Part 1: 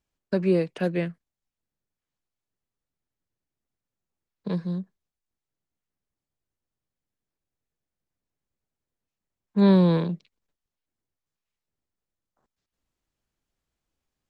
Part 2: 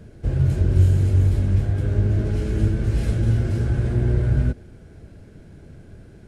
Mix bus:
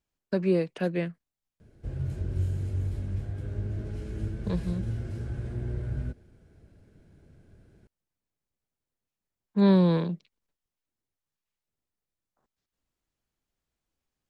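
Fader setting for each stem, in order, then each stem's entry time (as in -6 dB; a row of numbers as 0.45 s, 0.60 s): -2.5 dB, -13.0 dB; 0.00 s, 1.60 s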